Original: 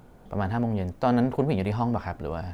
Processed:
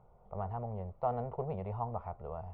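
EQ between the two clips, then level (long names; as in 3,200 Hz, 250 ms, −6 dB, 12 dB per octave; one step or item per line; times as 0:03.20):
transistor ladder low-pass 1,800 Hz, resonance 45%
phaser with its sweep stopped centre 670 Hz, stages 4
0.0 dB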